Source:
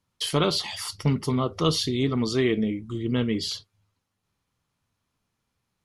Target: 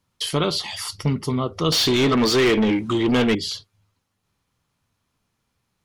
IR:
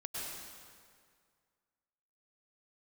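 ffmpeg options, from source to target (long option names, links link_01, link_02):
-filter_complex "[0:a]asplit=2[link_01][link_02];[link_02]acompressor=threshold=-34dB:ratio=6,volume=-3dB[link_03];[link_01][link_03]amix=inputs=2:normalize=0,asettb=1/sr,asplit=3[link_04][link_05][link_06];[link_04]atrim=end=1.724[link_07];[link_05]atrim=start=1.72:end=3.35,asetpts=PTS-STARTPTS,afade=type=in:duration=0.004:curve=qsin,afade=type=out:start_time=1.626:duration=0.004:curve=qsin,asplit=2[link_08][link_09];[link_09]highpass=frequency=720:poles=1,volume=25dB,asoftclip=type=tanh:threshold=-10dB[link_10];[link_08][link_10]amix=inputs=2:normalize=0,lowpass=frequency=4200:poles=1,volume=-6dB[link_11];[link_06]atrim=start=3.346[link_12];[link_07][link_11]acrossfade=duration=0.004:curve1=hsin:curve2=qsin[link_13];[link_13][link_12]acrossfade=duration=0.004:curve1=qsin:curve2=hsin"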